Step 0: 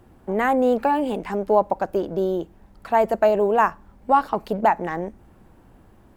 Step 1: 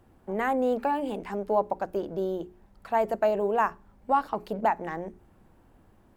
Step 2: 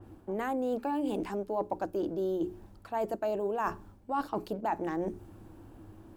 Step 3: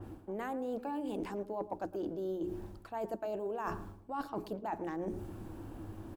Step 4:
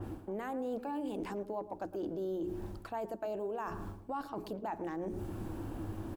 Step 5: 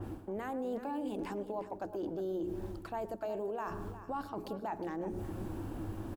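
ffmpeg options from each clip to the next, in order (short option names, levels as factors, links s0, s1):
-af "bandreject=f=60:t=h:w=6,bandreject=f=120:t=h:w=6,bandreject=f=180:t=h:w=6,bandreject=f=240:t=h:w=6,bandreject=f=300:t=h:w=6,bandreject=f=360:t=h:w=6,bandreject=f=420:t=h:w=6,volume=0.473"
-af "equalizer=f=100:t=o:w=0.33:g=10,equalizer=f=315:t=o:w=0.33:g=12,equalizer=f=2000:t=o:w=0.33:g=-5,areverse,acompressor=threshold=0.02:ratio=5,areverse,adynamicequalizer=threshold=0.00158:dfrequency=3500:dqfactor=0.7:tfrequency=3500:tqfactor=0.7:attack=5:release=100:ratio=0.375:range=2.5:mode=boostabove:tftype=highshelf,volume=1.58"
-filter_complex "[0:a]areverse,acompressor=threshold=0.00794:ratio=4,areverse,asplit=2[s0][s1];[s1]adelay=111,lowpass=f=1200:p=1,volume=0.2,asplit=2[s2][s3];[s3]adelay=111,lowpass=f=1200:p=1,volume=0.41,asplit=2[s4][s5];[s5]adelay=111,lowpass=f=1200:p=1,volume=0.41,asplit=2[s6][s7];[s7]adelay=111,lowpass=f=1200:p=1,volume=0.41[s8];[s0][s2][s4][s6][s8]amix=inputs=5:normalize=0,volume=1.78"
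-af "alimiter=level_in=3.55:limit=0.0631:level=0:latency=1:release=185,volume=0.282,volume=1.78"
-af "aecho=1:1:360:0.224"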